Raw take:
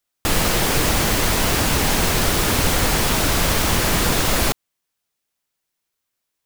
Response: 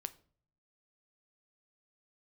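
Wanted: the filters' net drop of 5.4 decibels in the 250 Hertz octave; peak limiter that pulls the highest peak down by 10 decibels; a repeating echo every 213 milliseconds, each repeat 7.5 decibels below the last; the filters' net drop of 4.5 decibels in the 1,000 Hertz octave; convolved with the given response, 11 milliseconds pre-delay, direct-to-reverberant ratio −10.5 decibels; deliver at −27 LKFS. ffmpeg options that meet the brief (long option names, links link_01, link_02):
-filter_complex "[0:a]equalizer=frequency=250:width_type=o:gain=-7.5,equalizer=frequency=1000:width_type=o:gain=-5.5,alimiter=limit=-16dB:level=0:latency=1,aecho=1:1:213|426|639|852|1065:0.422|0.177|0.0744|0.0312|0.0131,asplit=2[link_01][link_02];[1:a]atrim=start_sample=2205,adelay=11[link_03];[link_02][link_03]afir=irnorm=-1:irlink=0,volume=13dB[link_04];[link_01][link_04]amix=inputs=2:normalize=0,volume=-13.5dB"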